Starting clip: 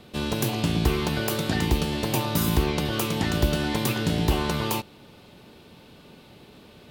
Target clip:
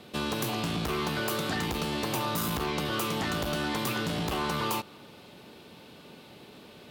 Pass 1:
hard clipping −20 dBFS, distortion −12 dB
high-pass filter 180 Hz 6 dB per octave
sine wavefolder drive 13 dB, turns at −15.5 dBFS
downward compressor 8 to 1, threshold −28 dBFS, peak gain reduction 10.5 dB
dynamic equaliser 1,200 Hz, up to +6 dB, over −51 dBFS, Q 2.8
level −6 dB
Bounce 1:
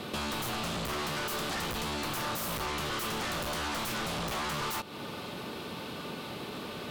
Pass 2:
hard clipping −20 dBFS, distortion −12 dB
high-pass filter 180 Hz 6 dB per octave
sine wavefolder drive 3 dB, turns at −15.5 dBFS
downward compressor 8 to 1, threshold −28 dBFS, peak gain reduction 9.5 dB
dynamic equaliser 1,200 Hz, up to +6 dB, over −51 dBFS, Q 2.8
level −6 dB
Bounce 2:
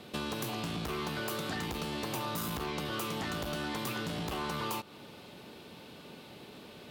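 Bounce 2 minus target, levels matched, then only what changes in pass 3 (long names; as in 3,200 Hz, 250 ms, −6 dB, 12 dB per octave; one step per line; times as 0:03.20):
downward compressor: peak gain reduction +5.5 dB
change: downward compressor 8 to 1, threshold −21.5 dBFS, peak gain reduction 3.5 dB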